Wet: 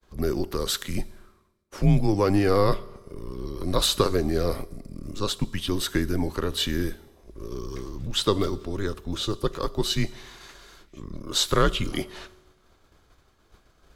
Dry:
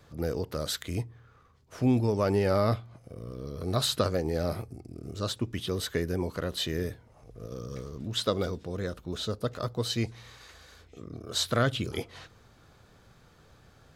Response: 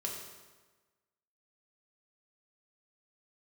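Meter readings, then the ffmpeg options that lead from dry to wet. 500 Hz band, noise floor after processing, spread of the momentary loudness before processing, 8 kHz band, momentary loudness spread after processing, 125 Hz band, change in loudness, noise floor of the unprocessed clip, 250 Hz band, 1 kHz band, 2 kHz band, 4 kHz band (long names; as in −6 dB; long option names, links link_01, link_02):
+3.5 dB, −63 dBFS, 18 LU, +6.0 dB, 19 LU, +3.5 dB, +4.5 dB, −59 dBFS, +4.5 dB, +5.5 dB, +4.0 dB, +5.5 dB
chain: -filter_complex "[0:a]afreqshift=-99,agate=range=-33dB:threshold=-50dB:ratio=3:detection=peak,asplit=2[link_01][link_02];[1:a]atrim=start_sample=2205,highshelf=frequency=7500:gain=11.5[link_03];[link_02][link_03]afir=irnorm=-1:irlink=0,volume=-17.5dB[link_04];[link_01][link_04]amix=inputs=2:normalize=0,volume=4.5dB"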